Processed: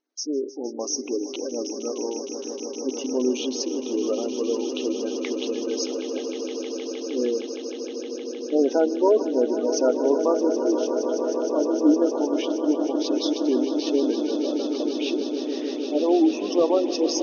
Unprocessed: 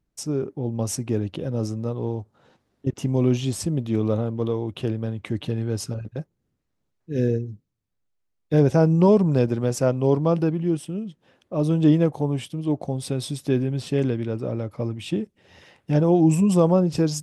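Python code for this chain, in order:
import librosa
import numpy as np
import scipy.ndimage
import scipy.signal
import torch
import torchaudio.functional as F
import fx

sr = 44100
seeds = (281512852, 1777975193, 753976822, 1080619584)

p1 = fx.octave_divider(x, sr, octaves=1, level_db=-4.0)
p2 = fx.brickwall_bandpass(p1, sr, low_hz=240.0, high_hz=6600.0)
p3 = fx.high_shelf(p2, sr, hz=3300.0, db=8.5)
p4 = 10.0 ** (-10.5 / 20.0) * (np.abs((p3 / 10.0 ** (-10.5 / 20.0) + 3.0) % 4.0 - 2.0) - 1.0)
p5 = fx.spec_gate(p4, sr, threshold_db=-20, keep='strong')
y = p5 + fx.echo_swell(p5, sr, ms=155, loudest=8, wet_db=-12.5, dry=0)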